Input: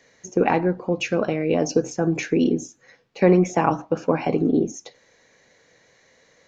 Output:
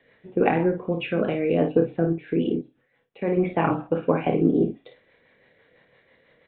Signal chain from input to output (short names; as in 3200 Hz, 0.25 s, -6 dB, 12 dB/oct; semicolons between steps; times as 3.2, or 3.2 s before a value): 2.06–3.37 level quantiser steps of 22 dB; rotary speaker horn 6 Hz; on a send: early reflections 30 ms -8 dB, 54 ms -8 dB; on the sum: downsampling 8000 Hz